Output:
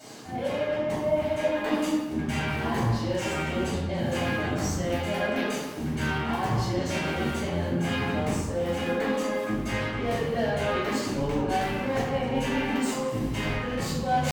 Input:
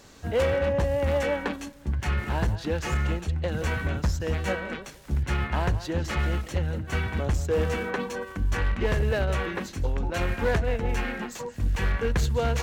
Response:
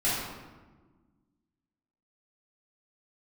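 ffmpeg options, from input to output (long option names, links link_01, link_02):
-filter_complex "[0:a]highpass=160,equalizer=frequency=1600:width=1.4:gain=-3.5,areverse,acompressor=threshold=-34dB:ratio=12,areverse,asoftclip=type=tanh:threshold=-28dB,atempo=0.81,asplit=2[link_01][link_02];[link_02]acrusher=bits=4:mix=0:aa=0.000001,volume=-4dB[link_03];[link_01][link_03]amix=inputs=2:normalize=0[link_04];[1:a]atrim=start_sample=2205,afade=type=out:start_time=0.45:duration=0.01,atrim=end_sample=20286[link_05];[link_04][link_05]afir=irnorm=-1:irlink=0,asetrate=48000,aresample=44100"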